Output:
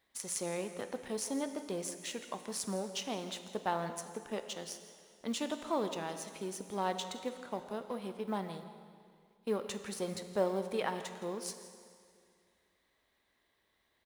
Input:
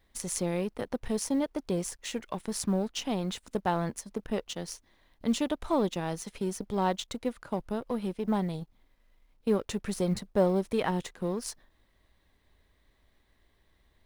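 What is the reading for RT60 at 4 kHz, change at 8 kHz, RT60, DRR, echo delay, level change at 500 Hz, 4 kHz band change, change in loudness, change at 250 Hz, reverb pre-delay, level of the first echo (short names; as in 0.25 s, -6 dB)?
2.1 s, -3.0 dB, 2.2 s, 8.0 dB, 0.167 s, -5.5 dB, -3.0 dB, -6.5 dB, -9.5 dB, 5 ms, -16.5 dB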